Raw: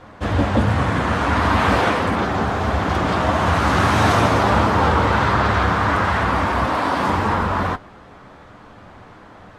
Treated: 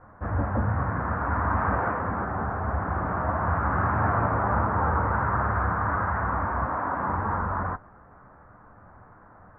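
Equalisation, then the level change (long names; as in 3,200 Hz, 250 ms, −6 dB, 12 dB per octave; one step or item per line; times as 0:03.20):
Butterworth low-pass 1,600 Hz 36 dB per octave
parametric band 340 Hz −7.5 dB 2.1 octaves
−5.0 dB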